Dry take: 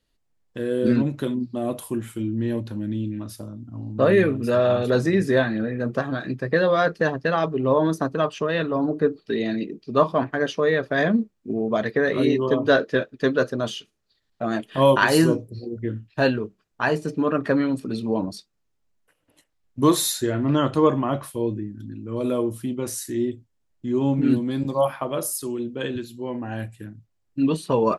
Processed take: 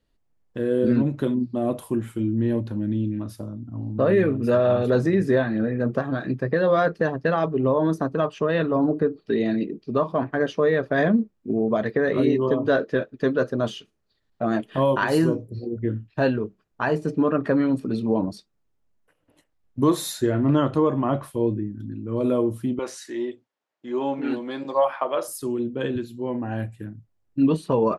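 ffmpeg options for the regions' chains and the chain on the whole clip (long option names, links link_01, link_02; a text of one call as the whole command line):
ffmpeg -i in.wav -filter_complex "[0:a]asettb=1/sr,asplit=3[link_01][link_02][link_03];[link_01]atrim=end=22.794[link_04];[link_02]atrim=start=22.79:end=25.28,asetpts=PTS-STARTPTS,afade=type=in:duration=0.004:curve=qsin,afade=type=out:start_time=2.486:duration=0.004:curve=qsin,acontrast=25,highpass=610,lowpass=5300[link_05];[link_03]atrim=start=25.276[link_06];[link_04][link_05]acrossfade=duration=0.004:curve1=hsin:curve2=qsin[link_07];[link_07][link_06]acrossfade=duration=0.004:curve1=qsin:curve2=hsin,highshelf=frequency=2100:gain=-9.5,alimiter=limit=-13dB:level=0:latency=1:release=234,volume=2.5dB" out.wav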